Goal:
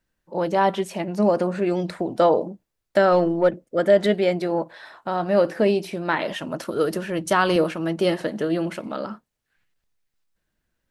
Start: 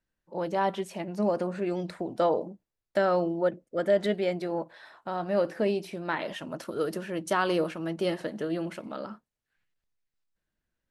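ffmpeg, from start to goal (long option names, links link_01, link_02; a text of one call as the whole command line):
ffmpeg -i in.wav -filter_complex "[0:a]asettb=1/sr,asplit=3[link_01][link_02][link_03];[link_01]atrim=end=3.124[link_04];[link_02]atrim=start=3.12:end=3.63,asetpts=PTS-STARTPTS,afade=type=in:duration=0.004:curve=qsin,afade=type=out:start_time=0.506:duration=0.004:curve=qsin,aeval=exprs='0.188*(cos(1*acos(clip(val(0)/0.188,-1,1)))-cos(1*PI/2))+0.00335*(cos(8*acos(clip(val(0)/0.188,-1,1)))-cos(8*PI/2))':channel_layout=same[link_05];[link_03]atrim=start=3.626[link_06];[link_04][link_05]acrossfade=duration=0.004:curve1=hsin:curve2=qsin[link_07];[link_07][link_06]acrossfade=duration=0.004:curve1=qsin:curve2=hsin,asettb=1/sr,asplit=3[link_08][link_09][link_10];[link_08]atrim=end=6.834[link_11];[link_09]atrim=start=6.83:end=7.56,asetpts=PTS-STARTPTS,afade=type=in:duration=0.004:curve=qsin,afade=type=out:start_time=0.726:duration=0.004:curve=qsin,asubboost=boost=11:cutoff=150[link_12];[link_10]atrim=start=7.556[link_13];[link_11][link_12]acrossfade=duration=0.004:curve1=hsin:curve2=qsin[link_14];[link_14][link_13]acrossfade=duration=0.004:curve1=qsin:curve2=hsin,volume=7.5dB" out.wav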